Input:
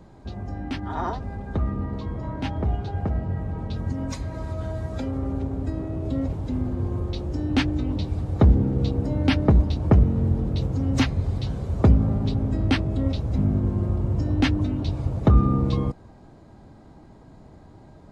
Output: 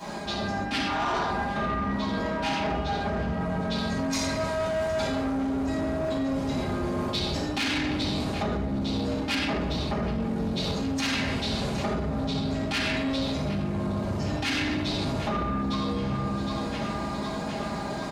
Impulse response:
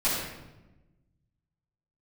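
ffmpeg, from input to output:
-filter_complex "[0:a]highpass=49,aecho=1:1:4.9:0.41,aecho=1:1:763|1526|2289|3052:0.0891|0.0481|0.026|0.014[link_01];[1:a]atrim=start_sample=2205[link_02];[link_01][link_02]afir=irnorm=-1:irlink=0,alimiter=limit=-5.5dB:level=0:latency=1:release=177,asplit=2[link_03][link_04];[link_04]highpass=frequency=720:poles=1,volume=16dB,asoftclip=type=tanh:threshold=-5.5dB[link_05];[link_03][link_05]amix=inputs=2:normalize=0,lowpass=frequency=2300:poles=1,volume=-6dB,crystalizer=i=7:c=0,areverse,acompressor=threshold=-24dB:ratio=6,areverse,volume=-2.5dB"

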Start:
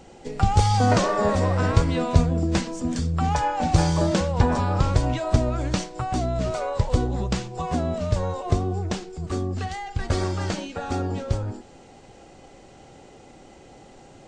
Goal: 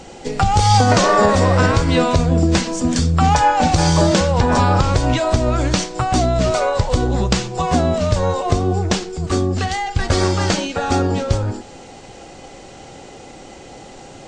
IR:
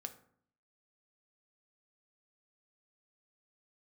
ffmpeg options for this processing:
-filter_complex "[0:a]alimiter=limit=-13dB:level=0:latency=1:release=162,asplit=2[link_01][link_02];[link_02]aemphasis=mode=production:type=riaa[link_03];[1:a]atrim=start_sample=2205,lowpass=6000[link_04];[link_03][link_04]afir=irnorm=-1:irlink=0,volume=-3dB[link_05];[link_01][link_05]amix=inputs=2:normalize=0,volume=7.5dB"

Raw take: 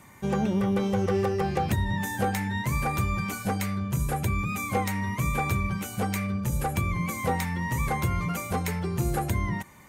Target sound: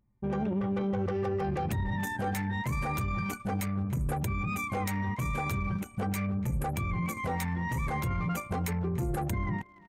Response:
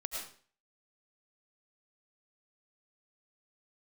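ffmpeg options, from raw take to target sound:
-filter_complex "[0:a]anlmdn=25.1,alimiter=limit=-24dB:level=0:latency=1:release=12,asplit=2[link_01][link_02];[link_02]adelay=290,highpass=300,lowpass=3400,asoftclip=type=hard:threshold=-32dB,volume=-17dB[link_03];[link_01][link_03]amix=inputs=2:normalize=0,adynamicequalizer=threshold=0.002:dfrequency=5300:dqfactor=0.7:tfrequency=5300:tqfactor=0.7:attack=5:release=100:ratio=0.375:range=1.5:mode=boostabove:tftype=highshelf"

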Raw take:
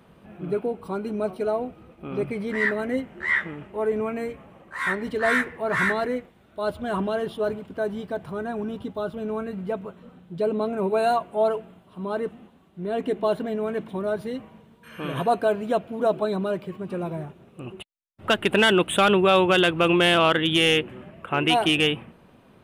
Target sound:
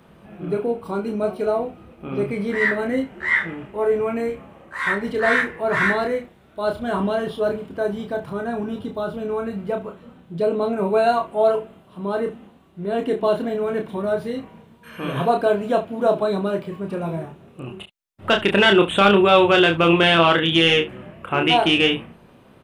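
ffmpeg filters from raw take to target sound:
ffmpeg -i in.wav -filter_complex "[0:a]acrossover=split=6100[link_01][link_02];[link_02]acompressor=threshold=-54dB:ratio=4:attack=1:release=60[link_03];[link_01][link_03]amix=inputs=2:normalize=0,aecho=1:1:30|71:0.596|0.158,volume=2.5dB" out.wav

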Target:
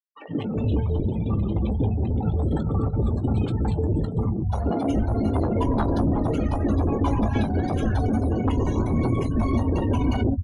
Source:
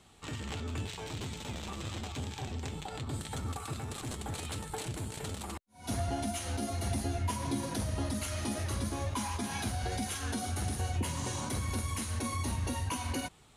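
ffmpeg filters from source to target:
ffmpeg -i in.wav -filter_complex "[0:a]afftfilt=real='re*gte(hypot(re,im),0.0158)':imag='im*gte(hypot(re,im),0.0158)':win_size=1024:overlap=0.75,highpass=frequency=69:poles=1,equalizer=frequency=12000:width_type=o:width=0.33:gain=2.5,acrossover=split=340[link_01][link_02];[link_01]aeval=exprs='0.0531*sin(PI/2*4.47*val(0)/0.0531)':channel_layout=same[link_03];[link_03][link_02]amix=inputs=2:normalize=0,atempo=1.3,adynamicsmooth=sensitivity=2.5:basefreq=3100,asplit=2[link_04][link_05];[link_05]adelay=18,volume=-12dB[link_06];[link_04][link_06]amix=inputs=2:normalize=0,acrossover=split=150|600[link_07][link_08][link_09];[link_08]adelay=130[link_10];[link_07]adelay=390[link_11];[link_11][link_10][link_09]amix=inputs=3:normalize=0,volume=8dB" out.wav

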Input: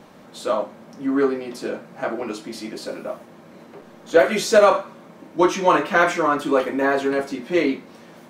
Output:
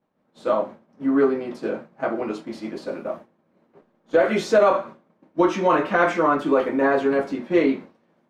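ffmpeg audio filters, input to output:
ffmpeg -i in.wav -af "agate=range=-33dB:threshold=-31dB:ratio=3:detection=peak,lowpass=frequency=1700:poles=1,alimiter=level_in=8.5dB:limit=-1dB:release=50:level=0:latency=1,volume=-7dB" out.wav

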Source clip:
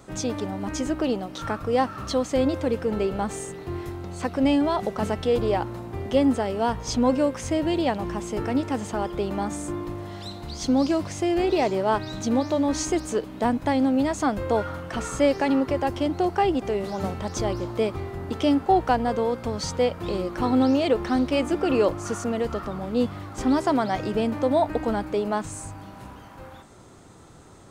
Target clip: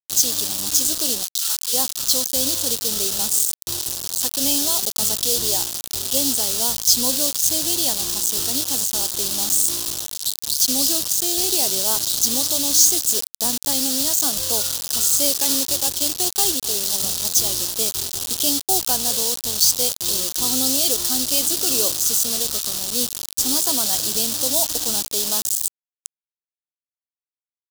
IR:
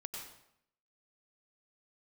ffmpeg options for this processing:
-filter_complex "[0:a]acrusher=bits=4:mix=0:aa=0.000001,asplit=3[link_01][link_02][link_03];[link_01]afade=type=out:start_time=1.23:duration=0.02[link_04];[link_02]highpass=1200,afade=type=in:start_time=1.23:duration=0.02,afade=type=out:start_time=1.72:duration=0.02[link_05];[link_03]afade=type=in:start_time=1.72:duration=0.02[link_06];[link_04][link_05][link_06]amix=inputs=3:normalize=0,asettb=1/sr,asplit=3[link_07][link_08][link_09];[link_07]atrim=end=15.364[link_10];[link_08]atrim=start=15.36:end=16.51,asetpts=PTS-STARTPTS,afade=type=in:duration=0.004:curve=qsin,afade=type=out:start_time=1.146:duration=0.004:curve=qsin,acrusher=bits=3:mode=log:mix=0:aa=0.000001[link_11];[link_09]atrim=start=16.506[link_12];[link_10][link_11]acrossfade=duration=0.004:curve1=hsin:curve2=qsin[link_13];[link_13][link_12]acrossfade=duration=0.004:curve1=qsin:curve2=hsin,aexciter=amount=15.8:drive=3.1:freq=3300,volume=-8dB"

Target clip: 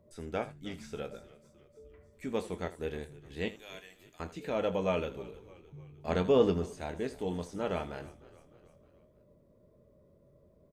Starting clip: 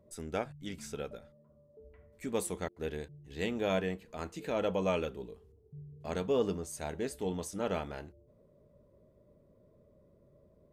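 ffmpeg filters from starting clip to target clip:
ffmpeg -i in.wav -filter_complex "[0:a]asettb=1/sr,asplit=3[link_01][link_02][link_03];[link_01]atrim=end=3.484[link_04];[link_02]atrim=start=3.48:end=4.2,asetpts=PTS-STARTPTS,afade=type=in:duration=0.004:curve=qsin,afade=type=out:start_time=0.716:duration=0.004:curve=qsin,aderivative[link_05];[link_03]atrim=start=4.196[link_06];[link_04][link_05]acrossfade=duration=0.004:curve1=hsin:curve2=qsin[link_07];[link_07][link_06]acrossfade=duration=0.004:curve1=qsin:curve2=hsin,asplit=5[link_08][link_09][link_10][link_11][link_12];[link_09]adelay=306,afreqshift=-40,volume=-20dB[link_13];[link_10]adelay=612,afreqshift=-80,volume=-25.4dB[link_14];[link_11]adelay=918,afreqshift=-120,volume=-30.7dB[link_15];[link_12]adelay=1224,afreqshift=-160,volume=-36.1dB[link_16];[link_08][link_13][link_14][link_15][link_16]amix=inputs=5:normalize=0,asettb=1/sr,asplit=3[link_17][link_18][link_19];[link_17]atrim=end=6.084[link_20];[link_18]atrim=start=6.08:end=6.66,asetpts=PTS-STARTPTS,afade=type=in:duration=0.004:curve=qsin,afade=type=out:start_time=0.576:duration=0.004:curve=qsin,acontrast=33[link_21];[link_19]atrim=start=6.656[link_22];[link_20][link_21]acrossfade=duration=0.004:curve1=hsin:curve2=qsin[link_23];[link_23][link_22]acrossfade=duration=0.004:curve1=qsin:curve2=hsin,aecho=1:1:23|80:0.282|0.15,acrossover=split=4800[link_24][link_25];[link_25]acompressor=threshold=-60dB:ratio=4:attack=1:release=60[link_26];[link_24][link_26]amix=inputs=2:normalize=0" out.wav

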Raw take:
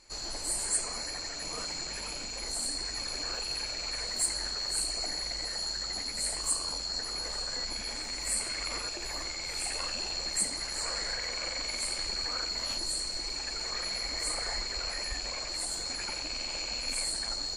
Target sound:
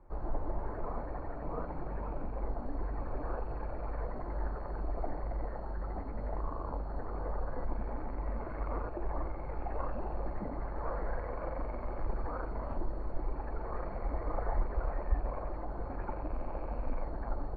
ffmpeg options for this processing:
ffmpeg -i in.wav -filter_complex "[0:a]lowpass=frequency=1100:width=0.5412,lowpass=frequency=1100:width=1.3066,acrossover=split=120[link_01][link_02];[link_01]acontrast=75[link_03];[link_03][link_02]amix=inputs=2:normalize=0,volume=4.5dB" out.wav

